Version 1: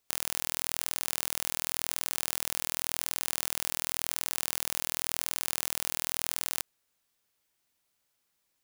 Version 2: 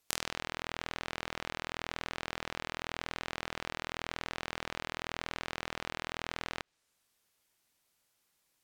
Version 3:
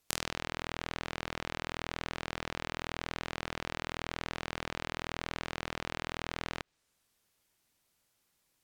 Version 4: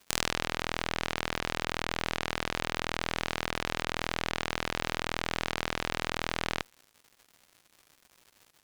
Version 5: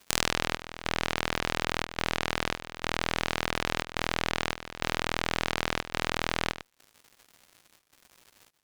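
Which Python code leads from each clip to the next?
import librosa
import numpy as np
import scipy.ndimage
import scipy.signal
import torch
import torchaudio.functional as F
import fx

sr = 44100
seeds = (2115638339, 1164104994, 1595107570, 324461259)

y1 = fx.env_lowpass_down(x, sr, base_hz=2400.0, full_db=-40.5)
y1 = y1 * 10.0 ** (2.0 / 20.0)
y2 = fx.low_shelf(y1, sr, hz=320.0, db=5.5)
y3 = fx.cheby_harmonics(y2, sr, harmonics=(6,), levels_db=(-10,), full_scale_db=-5.5)
y3 = fx.dmg_crackle(y3, sr, seeds[0], per_s=220.0, level_db=-44.0)
y4 = fx.step_gate(y3, sr, bpm=106, pattern='xxxx..xxxxxxx.', floor_db=-12.0, edge_ms=4.5)
y4 = y4 * 10.0 ** (3.0 / 20.0)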